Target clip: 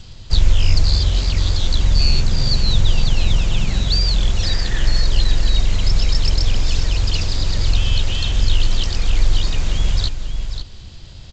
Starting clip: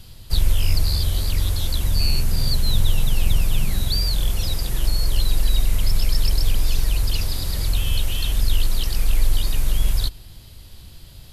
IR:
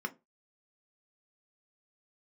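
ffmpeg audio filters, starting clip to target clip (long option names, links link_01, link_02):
-filter_complex "[0:a]asettb=1/sr,asplit=3[link_01][link_02][link_03];[link_01]atrim=end=4.434[link_04];[link_02]atrim=start=4.43:end=5.02,asetpts=PTS-STARTPTS,afade=type=in:duration=0.004:curve=qsin,afade=type=out:start_time=0.586:duration=0.004:curve=qsin,equalizer=frequency=1800:width_type=o:width=0.37:gain=12[link_05];[link_03]atrim=start=5.016[link_06];[link_04][link_05]acrossfade=duration=0.004:curve1=hsin:curve2=qsin[link_07];[link_07][link_06]acrossfade=duration=0.004:curve1=qsin:curve2=hsin,aecho=1:1:539:0.335,volume=4.5dB" -ar 16000 -c:a g722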